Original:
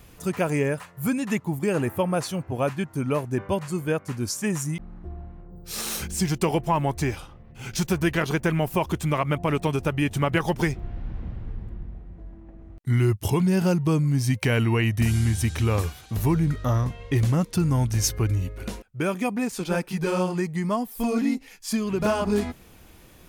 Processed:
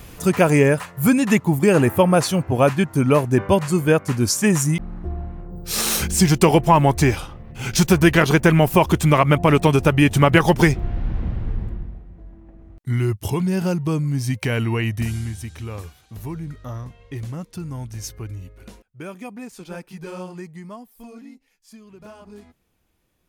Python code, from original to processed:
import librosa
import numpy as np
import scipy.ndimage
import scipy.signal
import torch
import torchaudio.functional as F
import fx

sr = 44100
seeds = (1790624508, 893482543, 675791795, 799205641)

y = fx.gain(x, sr, db=fx.line((11.64, 9.0), (12.07, 0.0), (14.92, 0.0), (15.47, -9.0), (20.46, -9.0), (21.35, -19.0)))